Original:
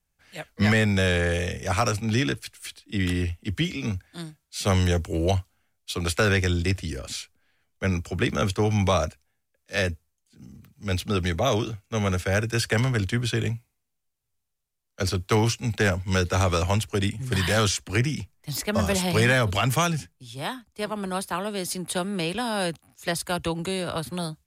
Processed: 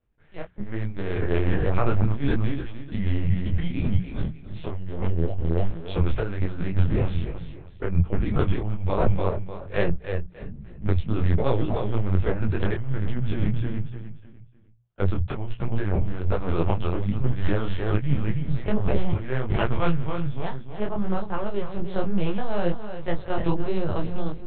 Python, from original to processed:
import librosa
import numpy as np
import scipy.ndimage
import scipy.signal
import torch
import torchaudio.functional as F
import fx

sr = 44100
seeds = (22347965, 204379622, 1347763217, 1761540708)

y = fx.zero_step(x, sr, step_db=-32.5, at=(4.83, 7.14))
y = scipy.signal.sosfilt(scipy.signal.butter(2, 100.0, 'highpass', fs=sr, output='sos'), y)
y = fx.tilt_eq(y, sr, slope=-4.5)
y = fx.echo_feedback(y, sr, ms=300, feedback_pct=31, wet_db=-9.0)
y = fx.over_compress(y, sr, threshold_db=-16.0, ratio=-0.5)
y = fx.lpc_vocoder(y, sr, seeds[0], excitation='pitch_kept', order=8)
y = fx.peak_eq(y, sr, hz=260.0, db=-8.0, octaves=0.68)
y = fx.hum_notches(y, sr, base_hz=60, count=3)
y = fx.detune_double(y, sr, cents=42)